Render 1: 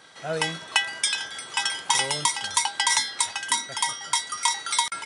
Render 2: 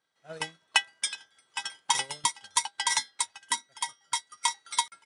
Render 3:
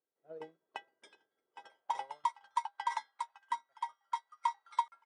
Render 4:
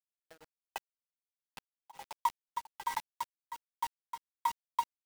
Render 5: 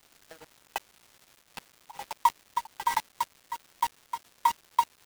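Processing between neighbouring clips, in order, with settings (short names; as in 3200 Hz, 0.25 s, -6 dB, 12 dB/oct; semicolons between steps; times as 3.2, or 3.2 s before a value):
upward expander 2.5:1, over -37 dBFS
dynamic EQ 580 Hz, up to +4 dB, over -45 dBFS, Q 1; band-pass sweep 400 Hz -> 1000 Hz, 1.47–2.22; gain -3 dB
bit-crush 7-bit; beating tremolo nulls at 1.3 Hz; gain +2 dB
crackle 460/s -52 dBFS; gain +8 dB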